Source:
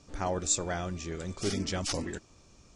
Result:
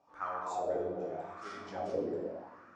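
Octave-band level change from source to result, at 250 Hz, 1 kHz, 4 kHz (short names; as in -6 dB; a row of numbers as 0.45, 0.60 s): -7.0, +0.5, -20.5 dB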